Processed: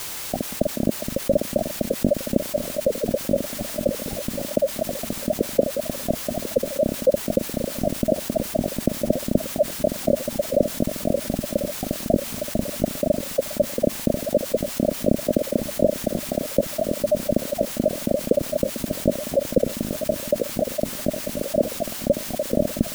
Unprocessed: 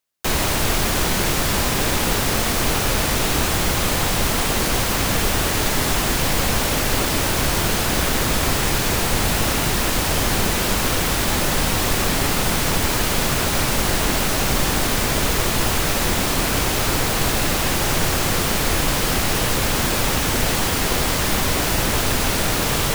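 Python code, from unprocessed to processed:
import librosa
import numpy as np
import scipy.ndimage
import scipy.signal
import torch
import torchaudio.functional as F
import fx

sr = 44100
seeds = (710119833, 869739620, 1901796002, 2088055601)

y = fx.sine_speech(x, sr)
y = scipy.signal.sosfilt(scipy.signal.butter(16, 600.0, 'lowpass', fs=sr, output='sos'), y)
y = fx.tilt_eq(y, sr, slope=-1.5)
y = fx.rider(y, sr, range_db=10, speed_s=2.0)
y = fx.low_shelf_res(y, sr, hz=340.0, db=13.0, q=3.0)
y = fx.granulator(y, sr, seeds[0], grain_ms=193.0, per_s=4.0, spray_ms=100.0, spread_st=0)
y = fx.quant_dither(y, sr, seeds[1], bits=10, dither='triangular')
y = fx.echo_feedback(y, sr, ms=1043, feedback_pct=39, wet_db=-19)
y = fx.env_flatten(y, sr, amount_pct=50)
y = y * 10.0 ** (9.0 / 20.0)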